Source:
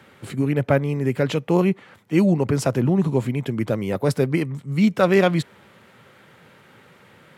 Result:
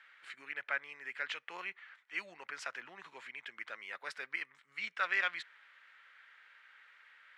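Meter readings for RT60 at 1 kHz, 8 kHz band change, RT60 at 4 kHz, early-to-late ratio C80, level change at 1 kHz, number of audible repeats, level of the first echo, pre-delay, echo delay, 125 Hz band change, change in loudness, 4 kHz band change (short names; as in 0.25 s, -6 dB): none, -20.0 dB, none, none, -14.5 dB, none, none, none, none, under -40 dB, -18.5 dB, -10.5 dB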